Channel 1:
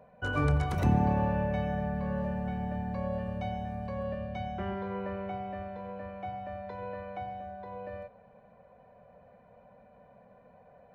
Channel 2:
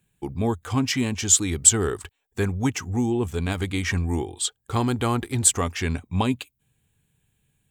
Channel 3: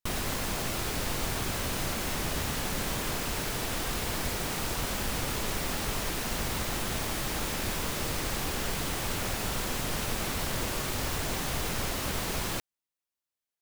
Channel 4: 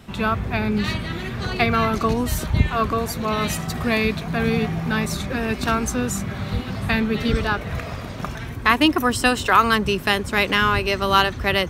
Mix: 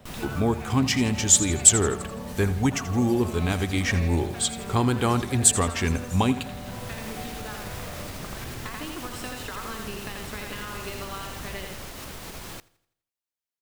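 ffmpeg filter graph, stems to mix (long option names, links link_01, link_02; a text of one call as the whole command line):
ffmpeg -i stem1.wav -i stem2.wav -i stem3.wav -i stem4.wav -filter_complex "[0:a]volume=-0.5dB[link_01];[1:a]volume=0.5dB,asplit=3[link_02][link_03][link_04];[link_03]volume=-14.5dB[link_05];[2:a]alimiter=level_in=1dB:limit=-24dB:level=0:latency=1:release=144,volume=-1dB,volume=-3.5dB,asplit=2[link_06][link_07];[link_07]volume=-23dB[link_08];[3:a]acompressor=threshold=-24dB:ratio=6,volume=-8.5dB,asplit=2[link_09][link_10];[link_10]volume=-6.5dB[link_11];[link_04]apad=whole_len=600415[link_12];[link_06][link_12]sidechaincompress=threshold=-30dB:ratio=8:attack=21:release=666[link_13];[link_01][link_09]amix=inputs=2:normalize=0,acompressor=threshold=-34dB:ratio=6,volume=0dB[link_14];[link_05][link_08][link_11]amix=inputs=3:normalize=0,aecho=0:1:83|166|249|332|415|498:1|0.45|0.202|0.0911|0.041|0.0185[link_15];[link_02][link_13][link_14][link_15]amix=inputs=4:normalize=0" out.wav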